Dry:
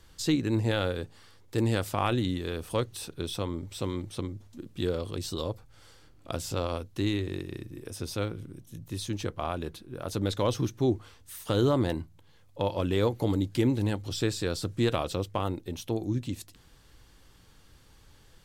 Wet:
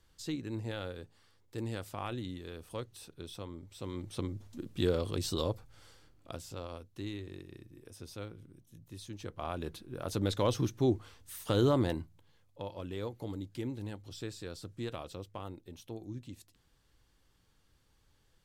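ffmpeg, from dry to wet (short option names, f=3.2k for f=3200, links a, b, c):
-af "volume=9.5dB,afade=t=in:st=3.78:d=0.66:silence=0.266073,afade=t=out:st=5.45:d=1.01:silence=0.251189,afade=t=in:st=9.18:d=0.57:silence=0.334965,afade=t=out:st=11.76:d=0.9:silence=0.298538"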